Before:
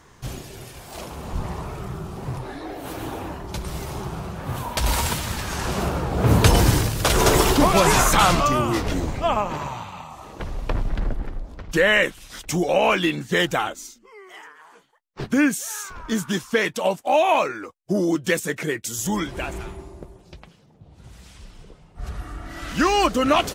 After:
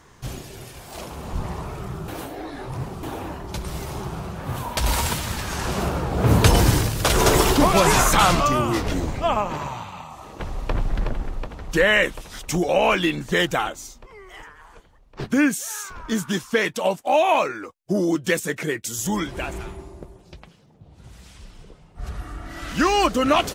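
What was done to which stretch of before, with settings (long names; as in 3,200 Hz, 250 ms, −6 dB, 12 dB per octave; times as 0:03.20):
0:02.08–0:03.03: reverse
0:10.01–0:10.73: delay throw 370 ms, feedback 80%, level −5.5 dB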